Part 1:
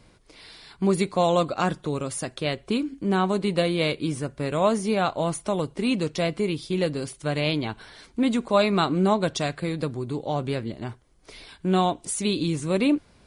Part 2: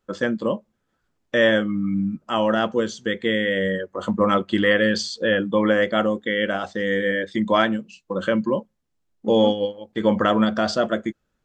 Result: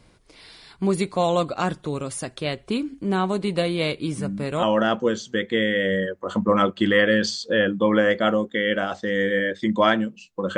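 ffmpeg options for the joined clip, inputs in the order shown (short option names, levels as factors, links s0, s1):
-filter_complex "[1:a]asplit=2[s0][s1];[0:a]apad=whole_dur=10.57,atrim=end=10.57,atrim=end=4.632[s2];[s1]atrim=start=2.348:end=8.29[s3];[s0]atrim=start=1.9:end=2.35,asetpts=PTS-STARTPTS,volume=0.473,afade=t=in:d=0.004:c=hsin,afade=t=out:st=0.446:d=0.004:c=hsin,adelay=4180[s4];[s2][s3]acrossfade=d=0.004:c1=hsin:c2=hsin[s5];[s5][s4]amix=inputs=2:normalize=0"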